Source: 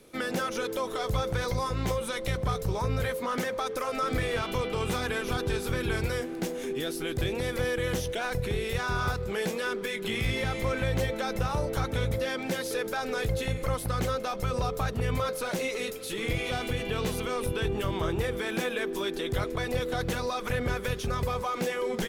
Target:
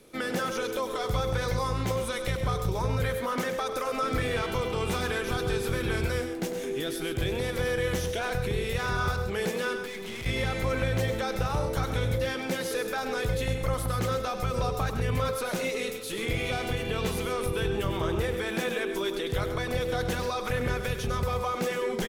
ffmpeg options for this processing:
ffmpeg -i in.wav -filter_complex "[0:a]asettb=1/sr,asplit=3[link_01][link_02][link_03];[link_01]atrim=end=9.764[link_04];[link_02]atrim=start=9.76:end=10.26,asetpts=PTS-STARTPTS,afade=type=in:duration=0.004:curve=qsin,afade=type=out:start_time=0.496:duration=0.004:curve=qsin,aeval=exprs='(tanh(63.1*val(0)+0.3)-tanh(0.3))/63.1':channel_layout=same[link_05];[link_03]atrim=start=10.256[link_06];[link_04][link_05]acrossfade=duration=0.004:curve1=hsin:curve2=qsin[link_07];[link_07][link_06]acrossfade=duration=0.004:curve1=qsin:curve2=hsin,aecho=1:1:99.13|134.1:0.316|0.282" out.wav

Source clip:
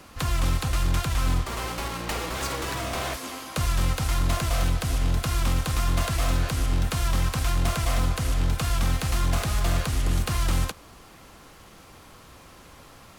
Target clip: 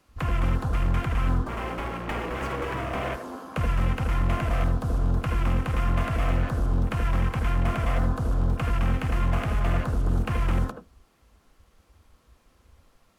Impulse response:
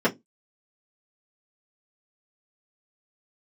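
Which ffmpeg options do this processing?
-filter_complex "[0:a]afwtdn=0.02,asplit=2[link_01][link_02];[1:a]atrim=start_sample=2205,adelay=71[link_03];[link_02][link_03]afir=irnorm=-1:irlink=0,volume=-23.5dB[link_04];[link_01][link_04]amix=inputs=2:normalize=0"

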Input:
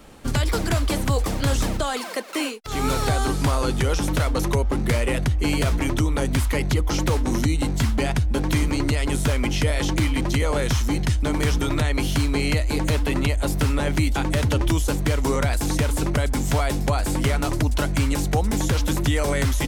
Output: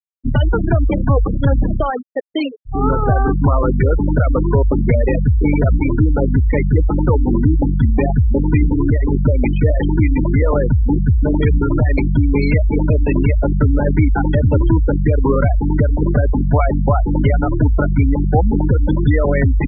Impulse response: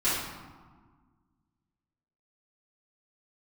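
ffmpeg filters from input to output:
-af "anlmdn=100,aeval=exprs='0.299*(cos(1*acos(clip(val(0)/0.299,-1,1)))-cos(1*PI/2))+0.0119*(cos(4*acos(clip(val(0)/0.299,-1,1)))-cos(4*PI/2))':channel_layout=same,afftfilt=real='re*gte(hypot(re,im),0.141)':imag='im*gte(hypot(re,im),0.141)':win_size=1024:overlap=0.75,volume=8dB"

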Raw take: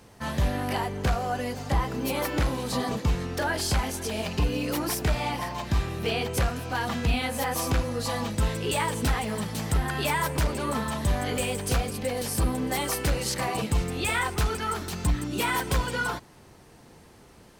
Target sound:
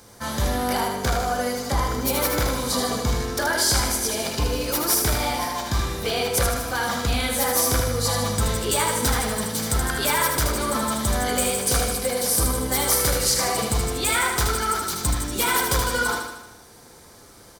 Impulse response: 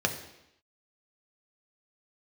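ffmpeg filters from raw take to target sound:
-filter_complex "[0:a]highshelf=frequency=4700:gain=11,aecho=1:1:77|154|231|308|385|462|539:0.562|0.315|0.176|0.0988|0.0553|0.031|0.0173,asplit=2[link_01][link_02];[1:a]atrim=start_sample=2205,lowshelf=frequency=420:gain=-10.5[link_03];[link_02][link_03]afir=irnorm=-1:irlink=0,volume=-12.5dB[link_04];[link_01][link_04]amix=inputs=2:normalize=0"

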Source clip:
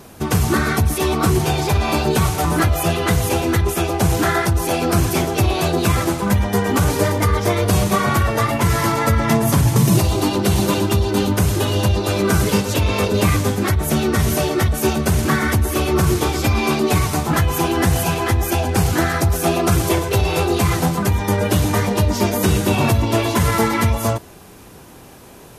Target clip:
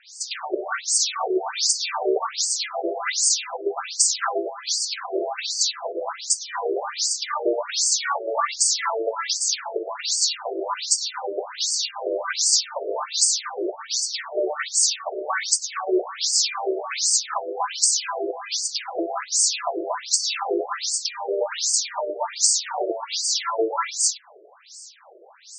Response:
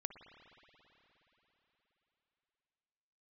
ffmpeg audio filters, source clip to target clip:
-af "aexciter=amount=5.6:drive=4.2:freq=4200,afftfilt=real='re*between(b*sr/1024,460*pow(6400/460,0.5+0.5*sin(2*PI*1.3*pts/sr))/1.41,460*pow(6400/460,0.5+0.5*sin(2*PI*1.3*pts/sr))*1.41)':imag='im*between(b*sr/1024,460*pow(6400/460,0.5+0.5*sin(2*PI*1.3*pts/sr))/1.41,460*pow(6400/460,0.5+0.5*sin(2*PI*1.3*pts/sr))*1.41)':win_size=1024:overlap=0.75"

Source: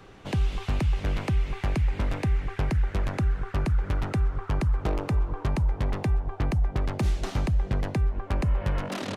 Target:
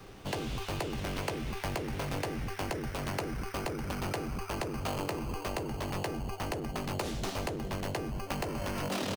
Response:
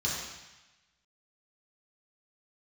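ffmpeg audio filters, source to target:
-filter_complex "[0:a]acrossover=split=470|2100[link_01][link_02][link_03];[link_01]aeval=exprs='0.0282*(abs(mod(val(0)/0.0282+3,4)-2)-1)':channel_layout=same[link_04];[link_02]acrusher=samples=12:mix=1:aa=0.000001[link_05];[link_03]asplit=2[link_06][link_07];[link_07]adelay=16,volume=-6dB[link_08];[link_06][link_08]amix=inputs=2:normalize=0[link_09];[link_04][link_05][link_09]amix=inputs=3:normalize=0"

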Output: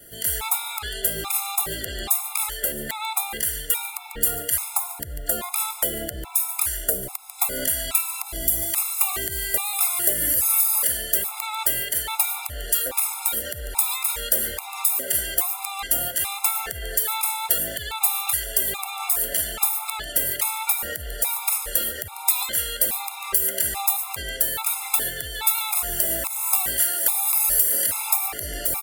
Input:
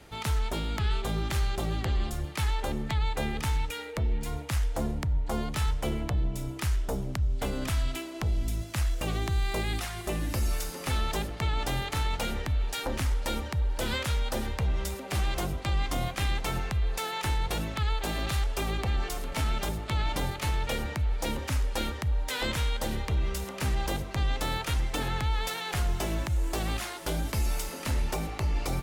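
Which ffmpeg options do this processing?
ffmpeg -i in.wav -filter_complex "[0:a]lowshelf=frequency=200:gain=-8.5,acrossover=split=450[link_01][link_02];[link_02]dynaudnorm=framelen=170:gausssize=3:maxgain=12dB[link_03];[link_01][link_03]amix=inputs=2:normalize=0,highshelf=frequency=9000:gain=9,acompressor=threshold=-27dB:ratio=6,aecho=1:1:145:0.119,aexciter=amount=5:drive=5.9:freq=8200,alimiter=level_in=3dB:limit=-1dB:release=50:level=0:latency=1,afftfilt=real='re*gt(sin(2*PI*1.2*pts/sr)*(1-2*mod(floor(b*sr/1024/690),2)),0)':imag='im*gt(sin(2*PI*1.2*pts/sr)*(1-2*mod(floor(b*sr/1024/690),2)),0)':win_size=1024:overlap=0.75" out.wav

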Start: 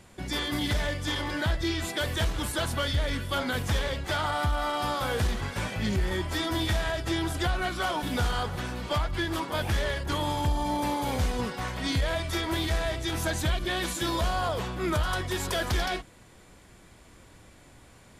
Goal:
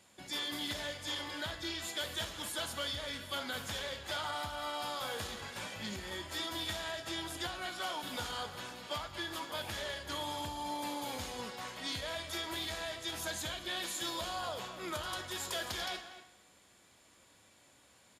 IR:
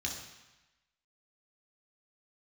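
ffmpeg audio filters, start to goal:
-filter_complex "[0:a]highpass=frequency=520:poles=1,bandreject=frequency=5900:width=13,asplit=2[link_01][link_02];[link_02]adelay=240,highpass=300,lowpass=3400,asoftclip=type=hard:threshold=-28dB,volume=-12dB[link_03];[link_01][link_03]amix=inputs=2:normalize=0,asplit=2[link_04][link_05];[1:a]atrim=start_sample=2205,highshelf=frequency=4500:gain=9.5[link_06];[link_05][link_06]afir=irnorm=-1:irlink=0,volume=-11.5dB[link_07];[link_04][link_07]amix=inputs=2:normalize=0,volume=-8dB"

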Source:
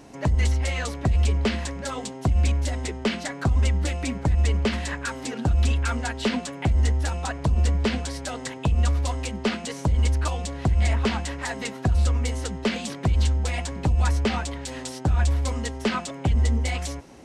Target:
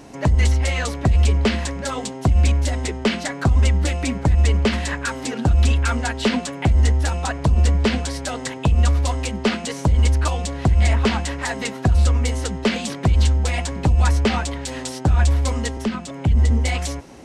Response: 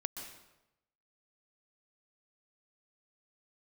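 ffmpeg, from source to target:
-filter_complex "[0:a]asettb=1/sr,asplit=3[link_01][link_02][link_03];[link_01]atrim=end=15.774[link_04];[link_02]atrim=start=15.77:end=16.51,asetpts=PTS-STARTPTS,afade=type=in:duration=0.004:curve=qsin,afade=type=out:start_time=0.736:duration=0.004:curve=qsin,acrossover=split=300[link_05][link_06];[link_06]acompressor=threshold=-34dB:ratio=10[link_07];[link_05][link_07]amix=inputs=2:normalize=0[link_08];[link_03]atrim=start=16.506[link_09];[link_04][link_08]acrossfade=duration=0.004:curve1=hsin:curve2=qsin[link_10];[link_10][link_09]acrossfade=duration=0.004:curve1=qsin:curve2=hsin,volume=5dB"

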